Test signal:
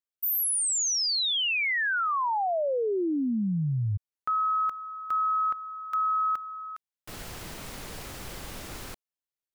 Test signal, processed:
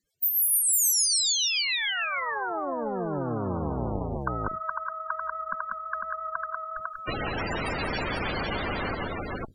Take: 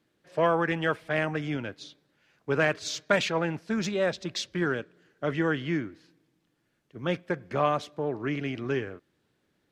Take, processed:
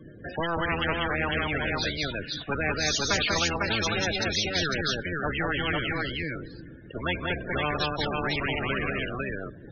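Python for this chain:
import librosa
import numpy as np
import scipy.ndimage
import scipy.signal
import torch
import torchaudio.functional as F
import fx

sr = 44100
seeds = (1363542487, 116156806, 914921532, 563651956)

p1 = fx.octave_divider(x, sr, octaves=1, level_db=0.0)
p2 = fx.rotary(p1, sr, hz=7.0)
p3 = fx.spec_topn(p2, sr, count=32)
p4 = p3 + fx.echo_multitap(p3, sr, ms=(171, 191, 501), db=(-19.0, -6.0, -7.5), dry=0)
y = fx.spectral_comp(p4, sr, ratio=4.0)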